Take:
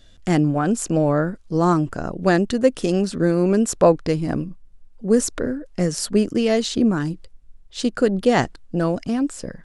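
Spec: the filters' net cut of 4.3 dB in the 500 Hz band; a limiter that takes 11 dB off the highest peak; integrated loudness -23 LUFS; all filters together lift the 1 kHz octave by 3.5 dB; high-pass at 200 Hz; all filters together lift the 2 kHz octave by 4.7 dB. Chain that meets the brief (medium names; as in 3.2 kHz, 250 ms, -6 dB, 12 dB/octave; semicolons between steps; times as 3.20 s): high-pass 200 Hz; peaking EQ 500 Hz -7 dB; peaking EQ 1 kHz +6.5 dB; peaking EQ 2 kHz +4 dB; trim +2 dB; peak limiter -10.5 dBFS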